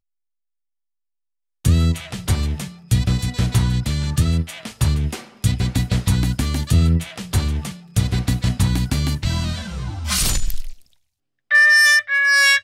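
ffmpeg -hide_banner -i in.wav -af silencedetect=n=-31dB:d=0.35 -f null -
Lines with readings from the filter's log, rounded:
silence_start: 0.00
silence_end: 1.65 | silence_duration: 1.65
silence_start: 10.73
silence_end: 11.51 | silence_duration: 0.78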